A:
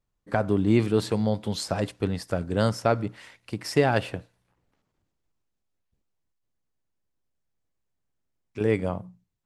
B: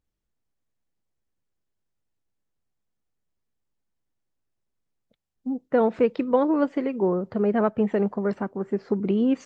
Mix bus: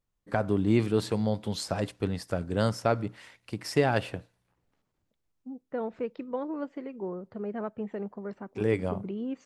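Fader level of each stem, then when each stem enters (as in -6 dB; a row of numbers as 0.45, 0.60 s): -3.0, -12.5 dB; 0.00, 0.00 s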